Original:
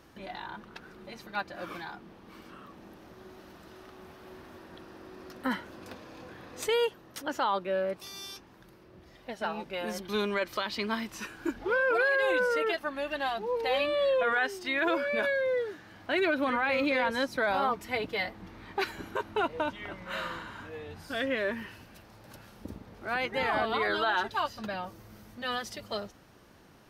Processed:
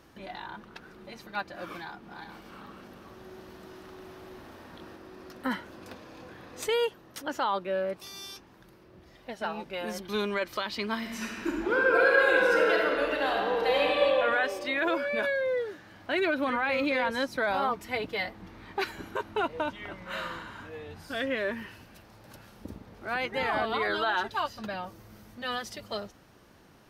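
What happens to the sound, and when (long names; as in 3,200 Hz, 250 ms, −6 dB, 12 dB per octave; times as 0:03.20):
0:01.82–0:04.96: feedback delay that plays each chunk backwards 212 ms, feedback 53%, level −3 dB
0:10.98–0:14.04: thrown reverb, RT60 2.7 s, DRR −2 dB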